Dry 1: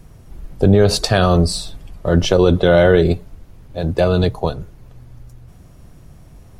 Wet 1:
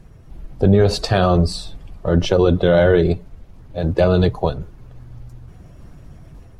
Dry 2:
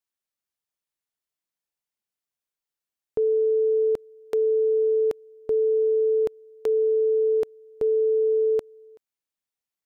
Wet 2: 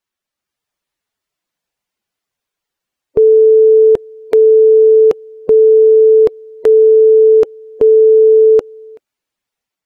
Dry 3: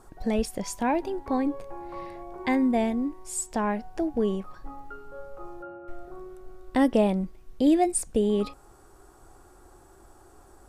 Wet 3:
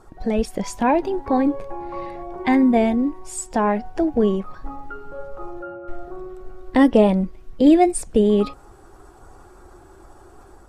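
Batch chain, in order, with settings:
bin magnitudes rounded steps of 15 dB; high shelf 6500 Hz -10.5 dB; AGC gain up to 3.5 dB; normalise peaks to -3 dBFS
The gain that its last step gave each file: -1.5, +11.0, +4.5 dB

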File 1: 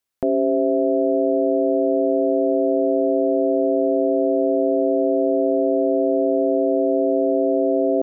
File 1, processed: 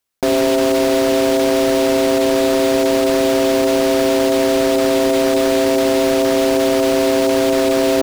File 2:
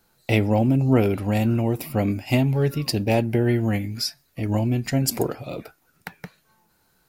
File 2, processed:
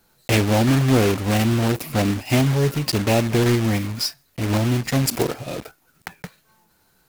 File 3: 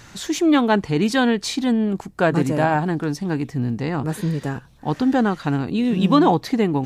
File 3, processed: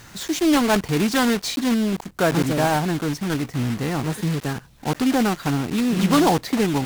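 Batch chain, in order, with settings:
block floating point 3-bit; in parallel at -3.5 dB: soft clip -15 dBFS; on the sum: Doppler distortion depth 0.17 ms; normalise peaks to -6 dBFS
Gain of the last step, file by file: 0.0, -2.0, -5.0 dB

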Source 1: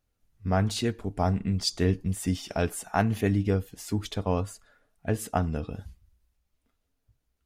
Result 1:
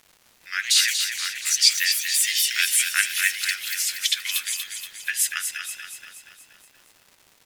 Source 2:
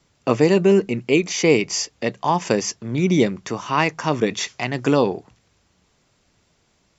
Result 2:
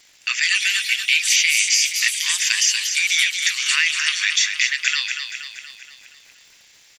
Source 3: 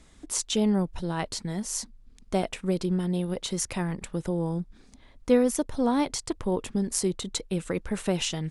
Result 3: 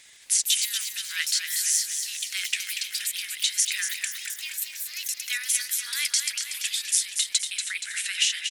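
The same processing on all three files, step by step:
steep high-pass 1700 Hz 48 dB/oct; compressor, threshold -30 dBFS; crackle 240/s -57 dBFS; echoes that change speed 0.217 s, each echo +4 st, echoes 3, each echo -6 dB; on a send: feedback echo 0.237 s, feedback 54%, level -7 dB; on the sum: normalise peaks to -2 dBFS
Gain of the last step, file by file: +17.0, +14.5, +11.0 dB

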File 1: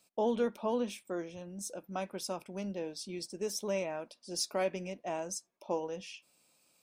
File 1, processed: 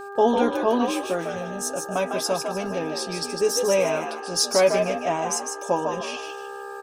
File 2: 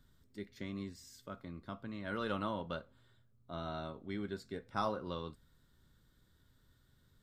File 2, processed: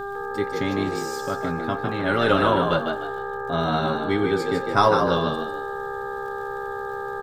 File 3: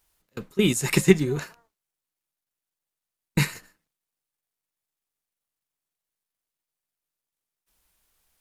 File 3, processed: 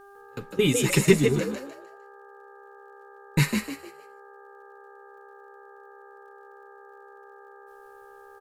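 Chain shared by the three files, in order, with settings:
comb 7.2 ms, depth 61%; crackle 43/s -56 dBFS; buzz 400 Hz, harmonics 4, -48 dBFS -3 dB/oct; frequency-shifting echo 0.152 s, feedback 33%, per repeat +66 Hz, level -5.5 dB; match loudness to -24 LUFS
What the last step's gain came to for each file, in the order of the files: +11.0, +16.5, -2.0 dB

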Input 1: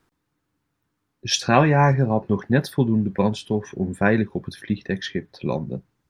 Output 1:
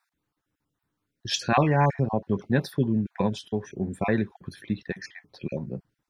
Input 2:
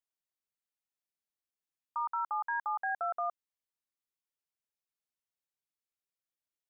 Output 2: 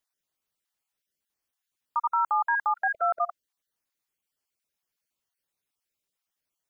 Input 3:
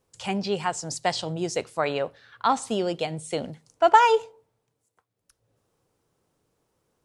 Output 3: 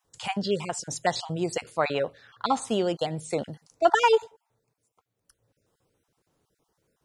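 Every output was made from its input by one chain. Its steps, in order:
random spectral dropouts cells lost 22%; match loudness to -27 LUFS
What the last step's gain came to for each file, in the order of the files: -4.5, +9.0, +0.5 dB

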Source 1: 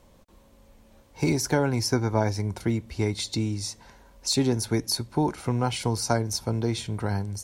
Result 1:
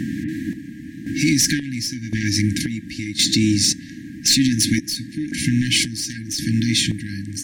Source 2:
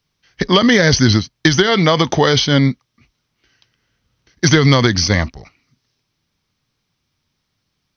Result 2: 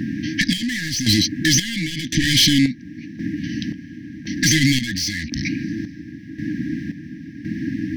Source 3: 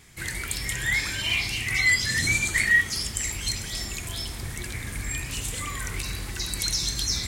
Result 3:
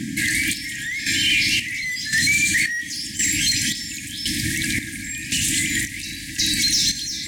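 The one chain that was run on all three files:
tracing distortion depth 0.021 ms; band noise 66–890 Hz -36 dBFS; HPF 43 Hz; overdrive pedal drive 26 dB, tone 1000 Hz, clips at 0 dBFS; tone controls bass -2 dB, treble +10 dB; compressor 5:1, threshold -19 dBFS; FFT band-reject 330–1600 Hz; limiter -17 dBFS; chopper 0.94 Hz, depth 65%, duty 50%; match loudness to -20 LUFS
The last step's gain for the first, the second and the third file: +9.0, +9.0, +5.0 dB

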